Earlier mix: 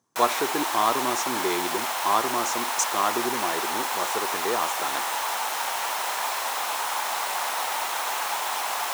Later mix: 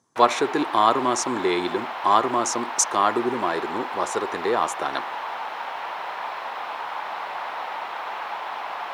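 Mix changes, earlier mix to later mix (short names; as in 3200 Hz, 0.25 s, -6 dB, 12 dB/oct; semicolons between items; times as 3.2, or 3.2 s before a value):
speech +5.0 dB; background: add air absorption 370 m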